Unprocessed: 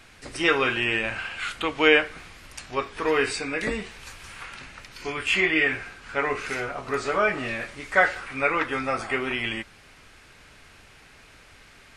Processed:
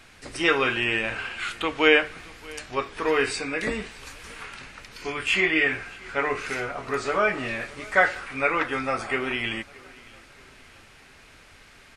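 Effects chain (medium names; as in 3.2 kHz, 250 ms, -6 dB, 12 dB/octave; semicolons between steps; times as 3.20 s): hum notches 50/100/150 Hz; on a send: feedback delay 625 ms, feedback 45%, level -23 dB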